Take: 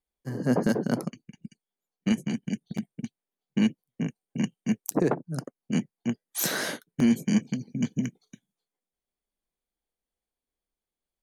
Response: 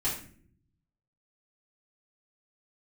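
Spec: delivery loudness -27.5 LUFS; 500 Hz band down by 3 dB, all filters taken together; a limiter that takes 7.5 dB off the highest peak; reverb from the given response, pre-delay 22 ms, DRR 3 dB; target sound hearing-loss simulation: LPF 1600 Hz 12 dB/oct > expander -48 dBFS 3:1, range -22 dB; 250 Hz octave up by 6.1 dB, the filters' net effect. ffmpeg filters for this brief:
-filter_complex "[0:a]equalizer=f=250:t=o:g=8.5,equalizer=f=500:t=o:g=-7.5,alimiter=limit=-14.5dB:level=0:latency=1,asplit=2[a][b];[1:a]atrim=start_sample=2205,adelay=22[c];[b][c]afir=irnorm=-1:irlink=0,volume=-10dB[d];[a][d]amix=inputs=2:normalize=0,lowpass=1.6k,agate=range=-22dB:threshold=-48dB:ratio=3,volume=-2.5dB"

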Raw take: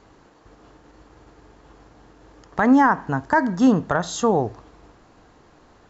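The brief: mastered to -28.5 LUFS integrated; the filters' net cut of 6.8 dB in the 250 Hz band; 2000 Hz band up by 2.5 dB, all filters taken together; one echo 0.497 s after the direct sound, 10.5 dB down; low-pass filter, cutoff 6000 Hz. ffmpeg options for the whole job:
-af "lowpass=6k,equalizer=f=250:t=o:g=-7.5,equalizer=f=2k:t=o:g=3.5,aecho=1:1:497:0.299,volume=-6.5dB"

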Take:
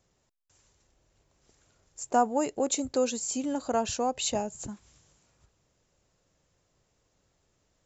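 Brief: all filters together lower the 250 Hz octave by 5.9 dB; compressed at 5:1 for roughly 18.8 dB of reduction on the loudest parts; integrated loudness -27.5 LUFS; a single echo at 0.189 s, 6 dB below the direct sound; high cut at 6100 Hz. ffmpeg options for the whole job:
-af "lowpass=6.1k,equalizer=f=250:t=o:g=-6.5,acompressor=threshold=-41dB:ratio=5,aecho=1:1:189:0.501,volume=16dB"

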